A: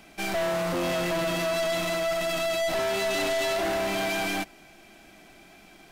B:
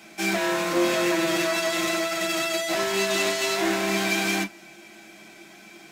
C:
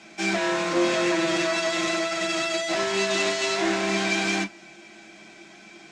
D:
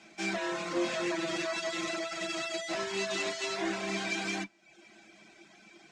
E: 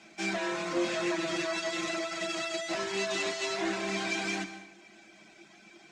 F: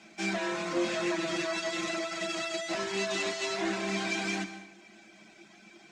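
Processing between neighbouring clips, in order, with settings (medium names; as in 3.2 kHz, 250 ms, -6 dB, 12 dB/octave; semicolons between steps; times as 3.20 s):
reverberation, pre-delay 3 ms, DRR -1.5 dB; trim +3 dB
low-pass 7.7 kHz 24 dB/octave
reverb removal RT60 0.68 s; trim -7.5 dB
plate-style reverb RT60 0.96 s, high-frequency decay 0.8×, pre-delay 110 ms, DRR 11 dB; trim +1 dB
peaking EQ 210 Hz +4.5 dB 0.31 oct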